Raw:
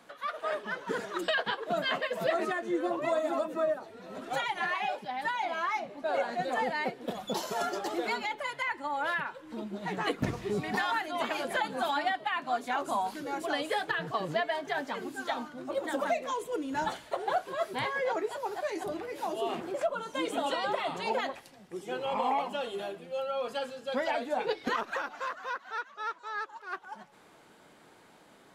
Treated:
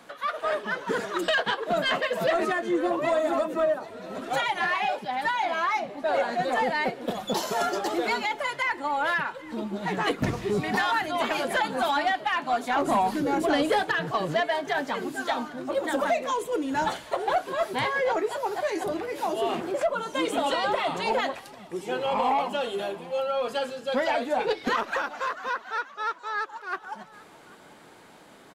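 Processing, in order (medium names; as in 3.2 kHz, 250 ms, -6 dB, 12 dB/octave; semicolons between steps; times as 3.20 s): 12.76–13.83 s: bass shelf 460 Hz +11 dB; saturation -22.5 dBFS, distortion -19 dB; on a send: delay 793 ms -22 dB; on the sum: trim +6.5 dB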